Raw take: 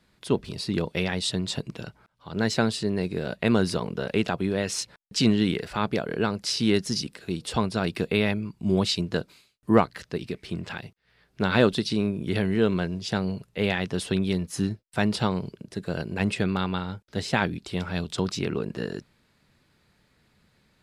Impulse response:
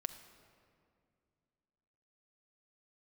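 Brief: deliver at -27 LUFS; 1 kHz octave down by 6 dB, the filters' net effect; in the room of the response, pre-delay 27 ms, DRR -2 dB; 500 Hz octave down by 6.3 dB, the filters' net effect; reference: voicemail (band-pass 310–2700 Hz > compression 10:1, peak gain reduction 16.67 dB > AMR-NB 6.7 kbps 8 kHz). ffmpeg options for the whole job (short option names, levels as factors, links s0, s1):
-filter_complex "[0:a]equalizer=f=500:t=o:g=-5.5,equalizer=f=1000:t=o:g=-6,asplit=2[s0][s1];[1:a]atrim=start_sample=2205,adelay=27[s2];[s1][s2]afir=irnorm=-1:irlink=0,volume=1.5[s3];[s0][s3]amix=inputs=2:normalize=0,highpass=310,lowpass=2700,acompressor=threshold=0.0282:ratio=10,volume=3.76" -ar 8000 -c:a libopencore_amrnb -b:a 6700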